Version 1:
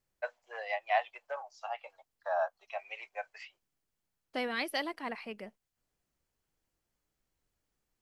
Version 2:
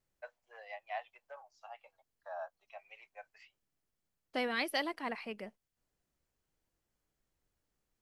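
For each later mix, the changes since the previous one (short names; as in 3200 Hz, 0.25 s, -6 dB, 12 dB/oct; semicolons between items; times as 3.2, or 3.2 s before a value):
first voice -11.5 dB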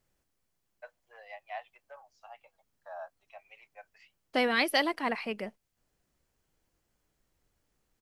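first voice: entry +0.60 s; second voice +7.5 dB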